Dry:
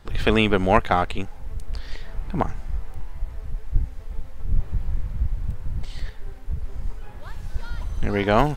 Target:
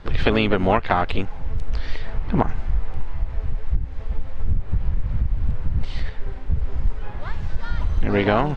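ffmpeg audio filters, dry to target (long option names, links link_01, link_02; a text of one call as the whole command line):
ffmpeg -i in.wav -filter_complex "[0:a]acompressor=threshold=-21dB:ratio=10,asplit=2[link_01][link_02];[link_02]asetrate=55563,aresample=44100,atempo=0.793701,volume=-9dB[link_03];[link_01][link_03]amix=inputs=2:normalize=0,lowpass=3800,volume=7dB" out.wav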